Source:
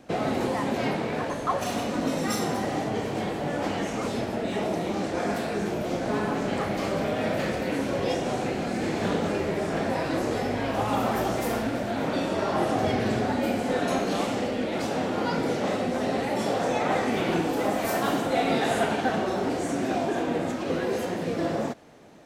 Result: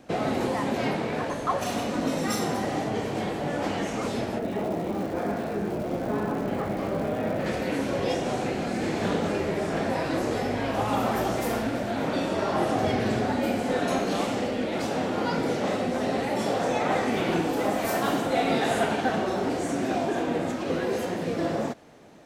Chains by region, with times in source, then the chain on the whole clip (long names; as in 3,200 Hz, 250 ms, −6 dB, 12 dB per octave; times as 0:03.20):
0:04.38–0:07.45: low-pass filter 1,200 Hz 6 dB per octave + surface crackle 490 per second −38 dBFS
whole clip: no processing